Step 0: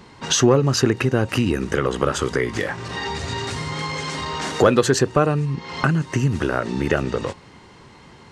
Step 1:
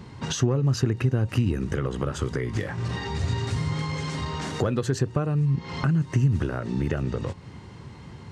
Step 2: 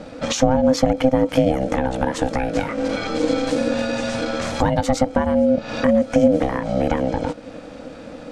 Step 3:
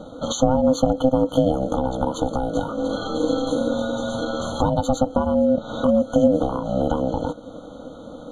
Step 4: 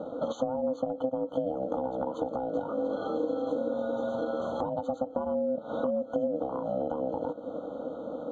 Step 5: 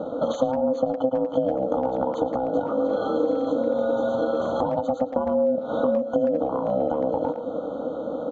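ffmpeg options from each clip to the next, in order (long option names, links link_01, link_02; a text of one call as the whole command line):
ffmpeg -i in.wav -af "acompressor=threshold=-31dB:ratio=2,equalizer=frequency=100:width_type=o:width=2.3:gain=13.5,volume=-3.5dB" out.wav
ffmpeg -i in.wav -af "aeval=exprs='val(0)*sin(2*PI*390*n/s)':channel_layout=same,volume=9dB" out.wav
ffmpeg -i in.wav -af "afftfilt=real='re*eq(mod(floor(b*sr/1024/1500),2),0)':imag='im*eq(mod(floor(b*sr/1024/1500),2),0)':win_size=1024:overlap=0.75,volume=-1.5dB" out.wav
ffmpeg -i in.wav -af "acompressor=threshold=-28dB:ratio=6,bandpass=frequency=530:width_type=q:width=0.89:csg=0,volume=3dB" out.wav
ffmpeg -i in.wav -filter_complex "[0:a]asplit=2[link_01][link_02];[link_02]adelay=110,highpass=300,lowpass=3400,asoftclip=type=hard:threshold=-23.5dB,volume=-9dB[link_03];[link_01][link_03]amix=inputs=2:normalize=0,aresample=16000,aresample=44100,volume=7dB" out.wav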